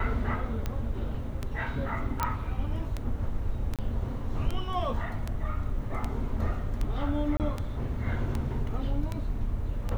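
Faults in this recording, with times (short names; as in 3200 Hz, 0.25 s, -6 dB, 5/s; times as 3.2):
tick 78 rpm -18 dBFS
2.23 pop -12 dBFS
3.76–3.79 gap 27 ms
7.37–7.4 gap 28 ms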